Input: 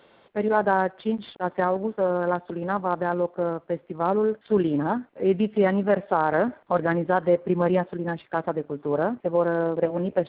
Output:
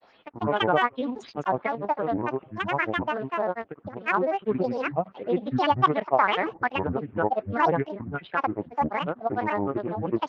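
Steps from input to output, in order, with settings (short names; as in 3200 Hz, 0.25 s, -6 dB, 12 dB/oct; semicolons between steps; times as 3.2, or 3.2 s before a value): grains 0.1 s, grains 20/s, pitch spread up and down by 12 st; LFO bell 2.6 Hz 720–3300 Hz +10 dB; gain -3.5 dB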